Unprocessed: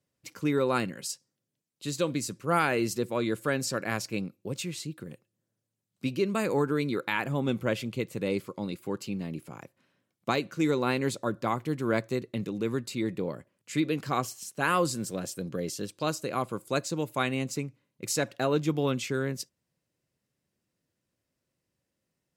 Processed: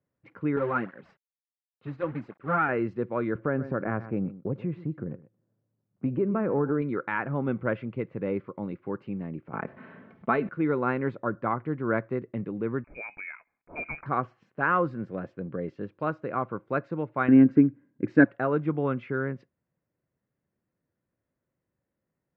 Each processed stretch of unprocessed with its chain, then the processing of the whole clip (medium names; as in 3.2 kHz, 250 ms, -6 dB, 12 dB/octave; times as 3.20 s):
0.56–2.69 s: companded quantiser 4-bit + cancelling through-zero flanger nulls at 1.4 Hz, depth 5.8 ms
3.35–6.82 s: tilt shelf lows +8 dB, about 1.5 kHz + delay 124 ms -18 dB + compression 2:1, threshold -26 dBFS
9.53–10.49 s: comb 4.6 ms, depth 53% + level flattener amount 50%
12.84–14.06 s: high-pass 290 Hz + frequency inversion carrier 2.7 kHz
17.28–18.25 s: bass shelf 180 Hz +6 dB + small resonant body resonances 280/1600 Hz, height 17 dB, ringing for 35 ms
whole clip: dynamic bell 1.4 kHz, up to +5 dB, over -46 dBFS, Q 2.9; low-pass 1.9 kHz 24 dB/octave